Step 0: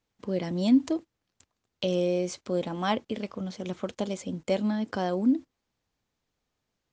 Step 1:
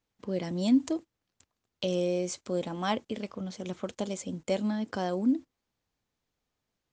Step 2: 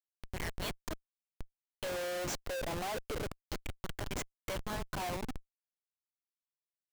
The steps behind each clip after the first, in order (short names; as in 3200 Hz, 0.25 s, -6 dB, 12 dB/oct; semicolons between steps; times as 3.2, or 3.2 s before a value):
dynamic EQ 7700 Hz, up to +7 dB, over -59 dBFS, Q 1.5; gain -2.5 dB
LFO high-pass saw down 0.3 Hz 470–2200 Hz; Schmitt trigger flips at -39 dBFS; gain +1.5 dB